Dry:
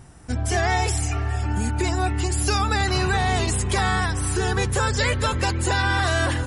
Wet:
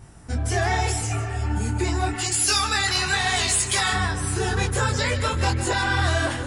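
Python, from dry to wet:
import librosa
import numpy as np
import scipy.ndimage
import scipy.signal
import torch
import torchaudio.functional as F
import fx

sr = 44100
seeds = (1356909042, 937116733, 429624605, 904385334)

p1 = fx.tilt_shelf(x, sr, db=-8.0, hz=1100.0, at=(2.13, 3.93))
p2 = 10.0 ** (-16.5 / 20.0) * np.tanh(p1 / 10.0 ** (-16.5 / 20.0))
p3 = p1 + (p2 * 10.0 ** (-7.0 / 20.0))
p4 = p3 + 10.0 ** (-12.0 / 20.0) * np.pad(p3, (int(155 * sr / 1000.0), 0))[:len(p3)]
y = fx.detune_double(p4, sr, cents=30)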